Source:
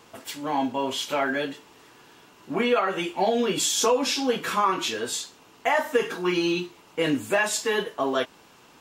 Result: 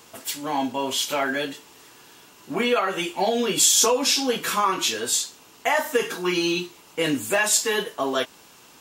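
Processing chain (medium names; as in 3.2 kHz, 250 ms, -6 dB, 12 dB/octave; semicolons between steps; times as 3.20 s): treble shelf 4.4 kHz +11.5 dB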